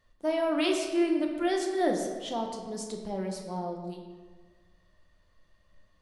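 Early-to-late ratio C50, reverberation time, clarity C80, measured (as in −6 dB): 4.5 dB, 1.5 s, 6.5 dB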